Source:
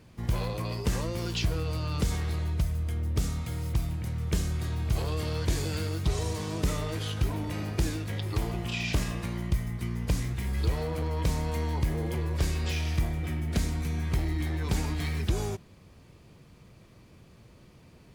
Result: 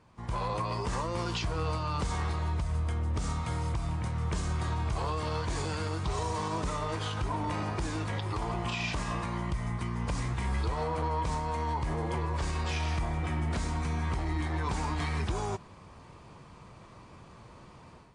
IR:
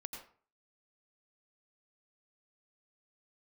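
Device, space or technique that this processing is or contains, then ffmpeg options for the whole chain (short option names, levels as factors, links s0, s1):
low-bitrate web radio: -af "equalizer=f=1000:w=1.3:g=13,dynaudnorm=f=260:g=3:m=3.16,alimiter=limit=0.2:level=0:latency=1:release=161,volume=0.376" -ar 22050 -c:a libmp3lame -b:a 48k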